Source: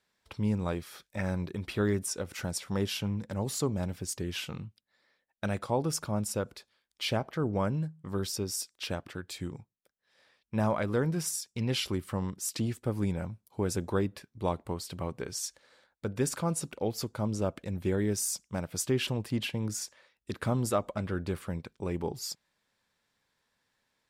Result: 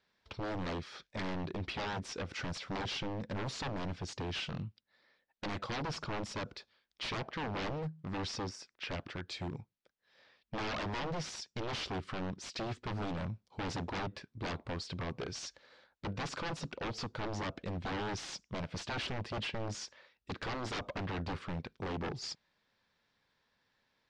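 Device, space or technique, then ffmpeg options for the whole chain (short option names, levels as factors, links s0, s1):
synthesiser wavefolder: -filter_complex "[0:a]asettb=1/sr,asplit=3[s0][s1][s2];[s0]atrim=end=8.494[s3];[s1]atrim=start=8.49:end=8.99,asetpts=PTS-STARTPTS,afade=t=in:d=0.004:c=qsin,afade=t=out:st=0.496:d=0.004:c=qsin,highshelf=f=2800:t=q:w=1.5:g=-7.5[s4];[s2]atrim=start=8.986[s5];[s3][s4]acrossfade=d=0.004:c1=hsin:c2=qsin[s6];[s6][s5]acrossfade=d=0.004:c1=qsin:c2=hsin,aeval=exprs='0.0224*(abs(mod(val(0)/0.0224+3,4)-2)-1)':c=same,lowpass=f=5400:w=0.5412,lowpass=f=5400:w=1.3066,volume=1.12"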